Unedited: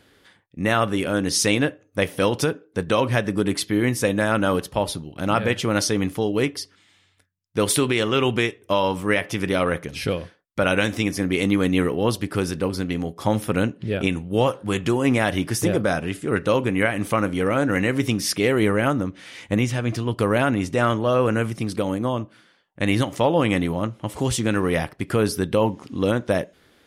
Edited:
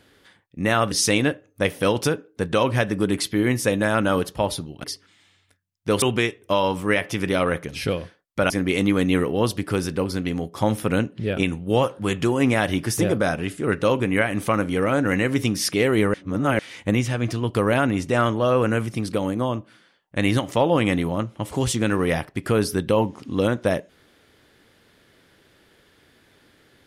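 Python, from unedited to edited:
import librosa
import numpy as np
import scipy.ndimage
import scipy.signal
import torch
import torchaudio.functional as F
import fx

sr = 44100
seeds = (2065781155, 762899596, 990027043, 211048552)

y = fx.edit(x, sr, fx.cut(start_s=0.91, length_s=0.37),
    fx.cut(start_s=5.21, length_s=1.32),
    fx.cut(start_s=7.71, length_s=0.51),
    fx.cut(start_s=10.7, length_s=0.44),
    fx.reverse_span(start_s=18.78, length_s=0.45), tone=tone)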